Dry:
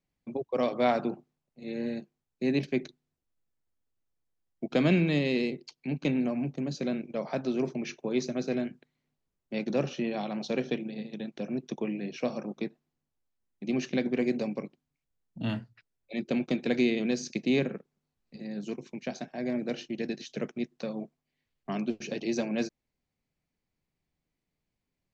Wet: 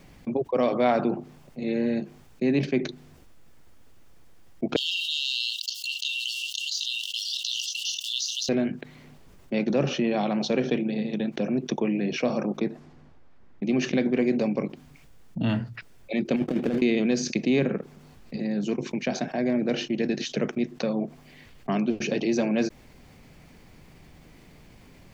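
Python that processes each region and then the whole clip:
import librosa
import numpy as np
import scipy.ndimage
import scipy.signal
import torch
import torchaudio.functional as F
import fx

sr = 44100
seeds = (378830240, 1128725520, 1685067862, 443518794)

y = fx.chain(x, sr, fx.leveller(passes=1),
    fx.brickwall_highpass(low_hz=2700.0),
    fx.env_flatten(amount_pct=70), at=(4.76, 8.49))
y = fx.chain(y, sr, fx.env_lowpass(base_hz=2800.0, full_db=-32.0),
    fx.peak_eq(hz=2900.0, db=-4.5, octaves=0.86), at=(12.6, 13.63))
y = fx.chain(y, sr, fx.median_filter(points=25),
    fx.over_compress(threshold_db=-31.0, ratio=-0.5), at=(16.36, 16.82))
y = fx.high_shelf(y, sr, hz=5000.0, db=-8.0)
y = fx.notch(y, sr, hz=4000.0, q=28.0)
y = fx.env_flatten(y, sr, amount_pct=50)
y = F.gain(torch.from_numpy(y), 2.5).numpy()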